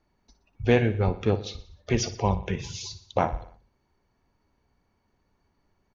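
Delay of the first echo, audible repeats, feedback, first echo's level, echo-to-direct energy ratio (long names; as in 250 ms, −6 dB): 60 ms, 4, 54%, −14.5 dB, −13.0 dB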